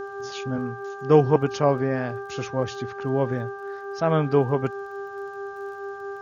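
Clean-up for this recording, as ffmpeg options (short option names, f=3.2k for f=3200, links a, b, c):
-af "adeclick=t=4,bandreject=f=395.4:t=h:w=4,bandreject=f=790.8:t=h:w=4,bandreject=f=1.1862k:t=h:w=4,bandreject=f=1.5816k:t=h:w=4,bandreject=f=400:w=30"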